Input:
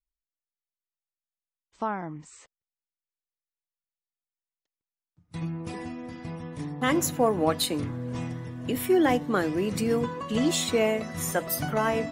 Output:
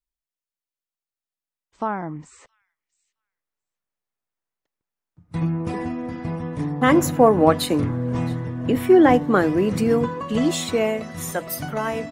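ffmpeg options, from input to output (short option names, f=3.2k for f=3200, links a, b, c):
-filter_complex "[0:a]asettb=1/sr,asplit=3[a][b][c];[a]atrim=end=8.304[d];[b]atrim=start=8.3:end=9.14,asetpts=PTS-STARTPTS,afade=t=in:d=0.004:c=qsin,afade=t=out:st=0.836:d=0.004:c=qsin,highshelf=f=8.3k:g=-7.5[e];[c]atrim=start=9.136[f];[d][e]acrossfade=d=0.004:c1=hsin:c2=qsin[g];[g][f]acrossfade=d=0.004:c1=qsin:c2=hsin,acrossover=split=2000[h][i];[h]dynaudnorm=f=370:g=13:m=11.5dB[j];[i]asplit=2[k][l];[l]adelay=668,lowpass=f=4.9k:p=1,volume=-18dB,asplit=2[m][n];[n]adelay=668,lowpass=f=4.9k:p=1,volume=0.16[o];[k][m][o]amix=inputs=3:normalize=0[p];[j][p]amix=inputs=2:normalize=0"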